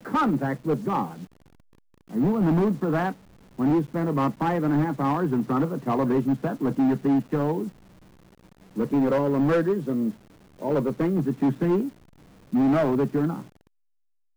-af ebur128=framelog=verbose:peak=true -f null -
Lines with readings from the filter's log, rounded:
Integrated loudness:
  I:         -24.6 LUFS
  Threshold: -35.5 LUFS
Loudness range:
  LRA:         1.9 LU
  Threshold: -45.4 LUFS
  LRA low:   -26.4 LUFS
  LRA high:  -24.4 LUFS
True peak:
  Peak:      -17.3 dBFS